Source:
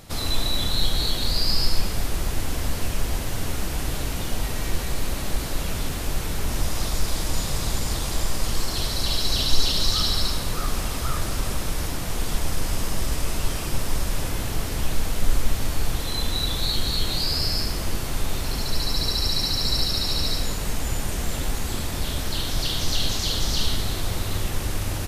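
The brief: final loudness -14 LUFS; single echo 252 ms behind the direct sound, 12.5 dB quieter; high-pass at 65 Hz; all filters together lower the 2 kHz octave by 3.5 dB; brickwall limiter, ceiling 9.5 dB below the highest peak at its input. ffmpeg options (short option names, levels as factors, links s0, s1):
-af "highpass=65,equalizer=f=2000:t=o:g=-4.5,alimiter=limit=0.0891:level=0:latency=1,aecho=1:1:252:0.237,volume=5.96"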